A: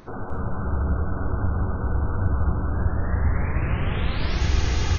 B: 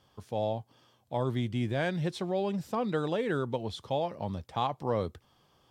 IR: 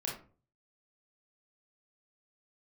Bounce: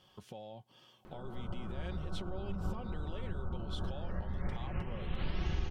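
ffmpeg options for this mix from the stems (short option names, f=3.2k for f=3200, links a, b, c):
-filter_complex "[0:a]highshelf=f=2.1k:g=-12,adelay=1050,volume=-5.5dB[a];[1:a]alimiter=level_in=4dB:limit=-24dB:level=0:latency=1,volume=-4dB,acompressor=threshold=-44dB:ratio=5,volume=-1.5dB,asplit=2[b][c];[c]apad=whole_len=266188[d];[a][d]sidechaincompress=threshold=-53dB:ratio=8:attack=5.1:release=160[e];[e][b]amix=inputs=2:normalize=0,equalizer=f=3k:w=2.8:g=8,aecho=1:1:5.4:0.39,acompressor=threshold=-31dB:ratio=3"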